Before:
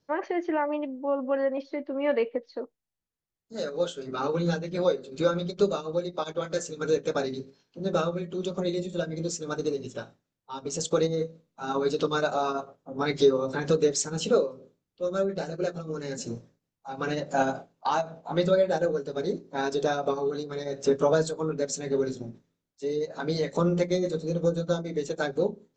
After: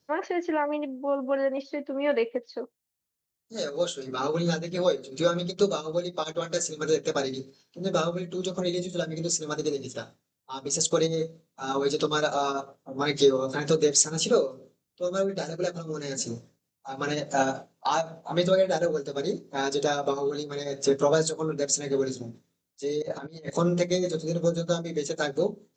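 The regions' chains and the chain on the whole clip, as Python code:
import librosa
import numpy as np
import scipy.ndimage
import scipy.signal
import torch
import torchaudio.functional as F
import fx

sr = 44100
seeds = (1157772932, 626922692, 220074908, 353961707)

y = fx.chain(x, sr, fx.over_compress(threshold_db=-39.0, ratio=-1.0),
    fx.transient(attack_db=5, sustain_db=-7),
    fx.high_shelf(hz=2700.0, db=-10.0), at=(23.02, 23.5))
y = scipy.signal.sosfilt(scipy.signal.butter(2, 48.0, 'highpass', fs=sr, output='sos'), y)
y = fx.high_shelf(y, sr, hz=4300.0, db=11.0)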